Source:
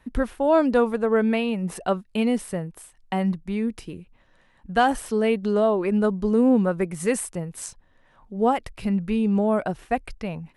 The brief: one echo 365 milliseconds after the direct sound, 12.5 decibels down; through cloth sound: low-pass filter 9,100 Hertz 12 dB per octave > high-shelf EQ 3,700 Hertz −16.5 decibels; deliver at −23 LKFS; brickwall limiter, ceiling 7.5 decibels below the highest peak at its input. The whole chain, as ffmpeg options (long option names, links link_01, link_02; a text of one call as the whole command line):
ffmpeg -i in.wav -af "alimiter=limit=-15.5dB:level=0:latency=1,lowpass=9100,highshelf=frequency=3700:gain=-16.5,aecho=1:1:365:0.237,volume=3dB" out.wav